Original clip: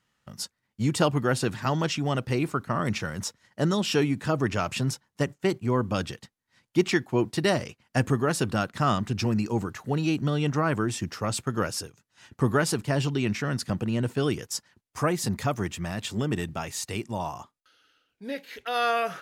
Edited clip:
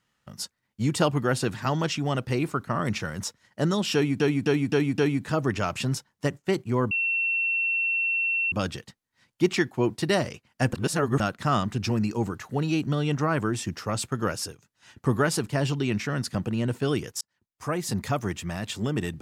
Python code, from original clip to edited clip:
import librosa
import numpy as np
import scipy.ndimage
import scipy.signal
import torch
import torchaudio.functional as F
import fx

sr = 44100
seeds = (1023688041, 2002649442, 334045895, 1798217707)

y = fx.edit(x, sr, fx.repeat(start_s=3.94, length_s=0.26, count=5),
    fx.insert_tone(at_s=5.87, length_s=1.61, hz=2710.0, db=-22.5),
    fx.reverse_span(start_s=8.08, length_s=0.47),
    fx.fade_in_span(start_s=14.56, length_s=0.77), tone=tone)